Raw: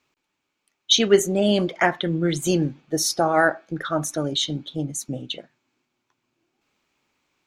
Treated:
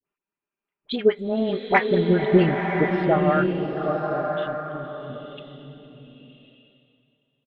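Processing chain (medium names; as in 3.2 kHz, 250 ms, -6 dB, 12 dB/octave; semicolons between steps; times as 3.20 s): local Wiener filter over 9 samples; Doppler pass-by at 2.39 s, 23 m/s, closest 11 m; inverse Chebyshev low-pass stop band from 5.7 kHz, stop band 40 dB; comb 5 ms, depth 40%; transient shaper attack +7 dB, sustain -4 dB; phase dispersion highs, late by 59 ms, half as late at 870 Hz; on a send: feedback delay 459 ms, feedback 46%, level -21 dB; on the sum: swelling reverb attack 1090 ms, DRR 2.5 dB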